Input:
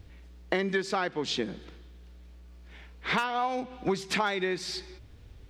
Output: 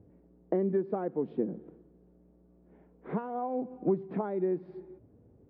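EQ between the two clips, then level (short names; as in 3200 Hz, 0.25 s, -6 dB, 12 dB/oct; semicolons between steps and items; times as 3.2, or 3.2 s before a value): Butterworth band-pass 300 Hz, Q 0.66; air absorption 250 m; +2.0 dB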